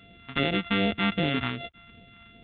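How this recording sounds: a buzz of ramps at a fixed pitch in blocks of 64 samples; phasing stages 2, 2.6 Hz, lowest notch 500–1100 Hz; µ-law

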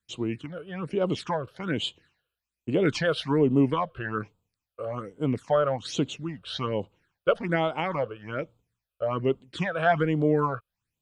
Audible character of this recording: phasing stages 8, 1.2 Hz, lowest notch 250–1800 Hz

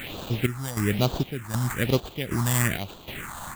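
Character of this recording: a quantiser's noise floor 6-bit, dither triangular; chopped level 1.3 Hz, depth 65%, duty 60%; aliases and images of a low sample rate 5.3 kHz, jitter 0%; phasing stages 4, 1.1 Hz, lowest notch 390–2000 Hz

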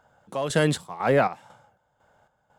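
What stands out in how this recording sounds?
chopped level 2 Hz, depth 65%, duty 55%

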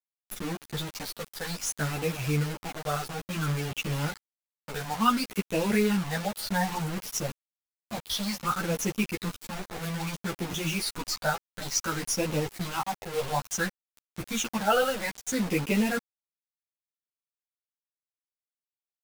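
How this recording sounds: phasing stages 8, 0.59 Hz, lowest notch 280–1400 Hz; a quantiser's noise floor 6-bit, dither none; a shimmering, thickened sound

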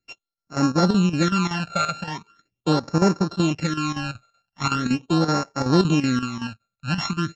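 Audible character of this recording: a buzz of ramps at a fixed pitch in blocks of 32 samples; phasing stages 12, 0.41 Hz, lowest notch 310–3200 Hz; chopped level 5.3 Hz, depth 65%, duty 80%; Vorbis

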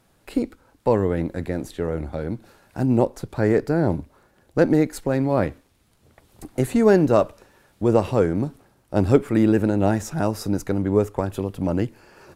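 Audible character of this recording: noise floor -62 dBFS; spectral tilt -6.5 dB/octave

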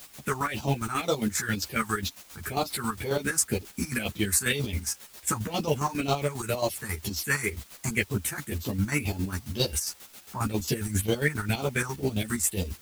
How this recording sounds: phasing stages 4, 2 Hz, lowest notch 510–1800 Hz; a quantiser's noise floor 8-bit, dither triangular; chopped level 7.4 Hz, depth 65%, duty 40%; a shimmering, thickened sound

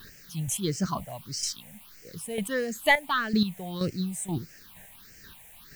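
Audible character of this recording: chopped level 2.1 Hz, depth 65%, duty 20%; a quantiser's noise floor 10-bit, dither triangular; phasing stages 6, 1.6 Hz, lowest notch 320–1000 Hz

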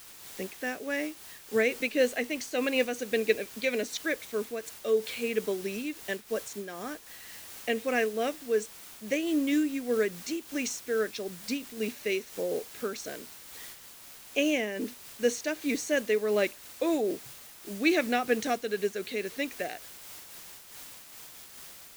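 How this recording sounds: a quantiser's noise floor 8-bit, dither triangular; random flutter of the level

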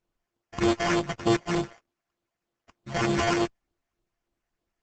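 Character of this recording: a buzz of ramps at a fixed pitch in blocks of 128 samples; phasing stages 6, 3.3 Hz, lowest notch 280–1900 Hz; aliases and images of a low sample rate 3.9 kHz, jitter 0%; Opus

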